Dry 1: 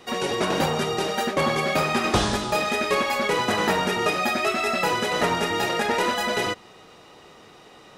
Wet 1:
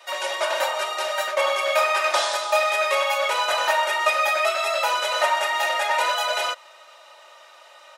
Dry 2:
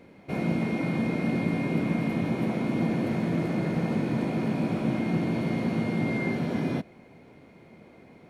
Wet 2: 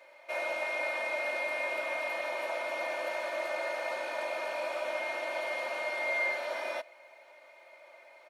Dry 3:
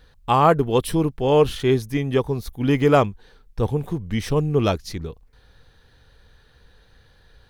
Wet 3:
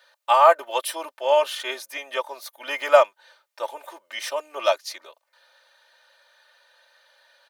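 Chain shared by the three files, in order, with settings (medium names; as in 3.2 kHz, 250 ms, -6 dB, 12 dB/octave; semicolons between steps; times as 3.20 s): Chebyshev high-pass 560 Hz, order 4; comb 3.3 ms, depth 94%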